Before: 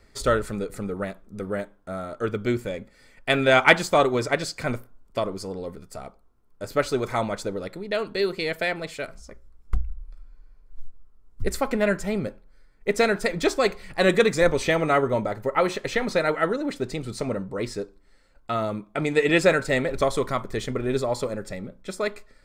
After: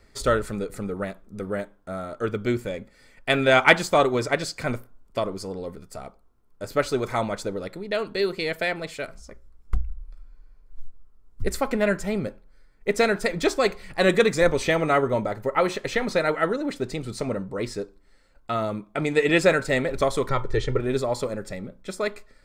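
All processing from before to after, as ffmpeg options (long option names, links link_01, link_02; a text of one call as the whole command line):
ffmpeg -i in.wav -filter_complex "[0:a]asettb=1/sr,asplit=3[link_01][link_02][link_03];[link_01]atrim=end=20.294[link_04];[link_02]atrim=start=20.29:end=20.8,asetpts=PTS-STARTPTS,afade=type=in:duration=0.004:curve=qsin,afade=type=out:start_time=0.506:duration=0.004:curve=qsin,lowpass=5400,lowshelf=frequency=170:gain=7,aecho=1:1:2.2:0.7,atrim=end_sample=22491[link_05];[link_03]atrim=start=20.796[link_06];[link_04][link_05]acrossfade=duration=0.004:curve1=hsin:curve2=qsin[link_07];[link_07][link_06]acrossfade=duration=0.004:curve1=qsin:curve2=hsin" out.wav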